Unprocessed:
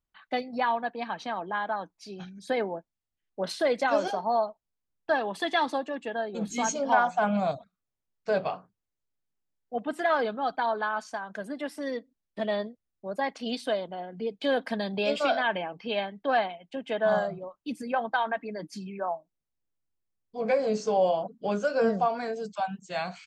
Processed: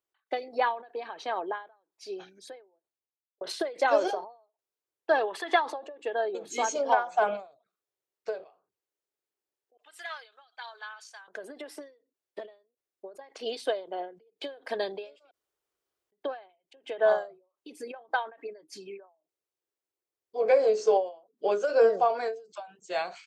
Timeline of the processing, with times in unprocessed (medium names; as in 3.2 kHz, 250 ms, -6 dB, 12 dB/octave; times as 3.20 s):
2.73–3.41 s: studio fade out
5.26–6.01 s: peaking EQ 2 kHz -> 500 Hz +11 dB 1.5 oct
9.77–11.28 s: Bessel high-pass 3 kHz
15.31–16.12 s: room tone
whole clip: high-pass 91 Hz; resonant low shelf 280 Hz -10.5 dB, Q 3; endings held to a fixed fall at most 150 dB/s